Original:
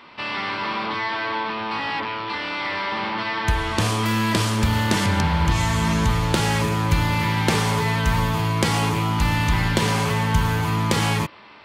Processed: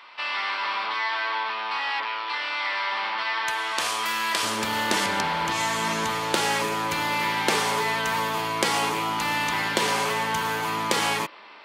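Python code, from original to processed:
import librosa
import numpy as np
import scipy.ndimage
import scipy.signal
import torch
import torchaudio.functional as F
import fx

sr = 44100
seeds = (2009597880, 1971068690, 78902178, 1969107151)

y = fx.highpass(x, sr, hz=fx.steps((0.0, 800.0), (4.43, 380.0)), slope=12)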